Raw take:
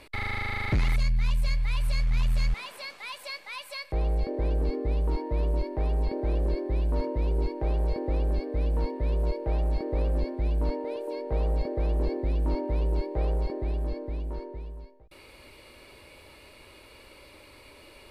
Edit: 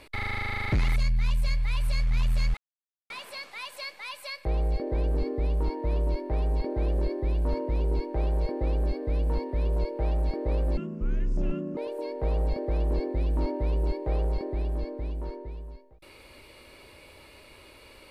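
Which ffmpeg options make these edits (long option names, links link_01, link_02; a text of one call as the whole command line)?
ffmpeg -i in.wav -filter_complex "[0:a]asplit=4[link_01][link_02][link_03][link_04];[link_01]atrim=end=2.57,asetpts=PTS-STARTPTS,afade=type=out:start_time=2.566:duration=0.004:curve=hsin,apad=pad_dur=0.53[link_05];[link_02]atrim=start=2.57:end=10.244,asetpts=PTS-STARTPTS,afade=type=in:duration=0.004:curve=hsin[link_06];[link_03]atrim=start=10.24:end=10.86,asetpts=PTS-STARTPTS,asetrate=27342,aresample=44100[link_07];[link_04]atrim=start=10.856[link_08];[link_05][link_06]concat=n=2:v=0:a=1[link_09];[link_09][link_07]acrossfade=duration=0.004:curve1=hsin:curve2=hsin[link_10];[link_10][link_08]acrossfade=duration=0.004:curve1=hsin:curve2=hsin" out.wav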